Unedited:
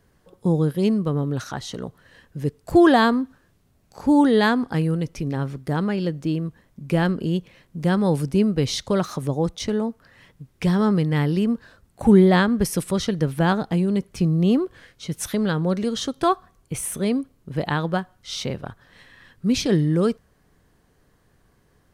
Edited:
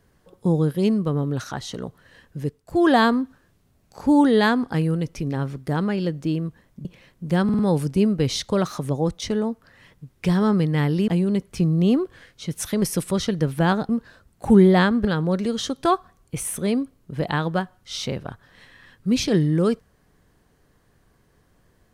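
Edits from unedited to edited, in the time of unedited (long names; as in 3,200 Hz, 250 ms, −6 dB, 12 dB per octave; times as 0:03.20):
0:02.38–0:02.97: duck −10 dB, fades 0.26 s
0:06.85–0:07.38: remove
0:07.97: stutter 0.05 s, 4 plays
0:11.46–0:12.62: swap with 0:13.69–0:15.43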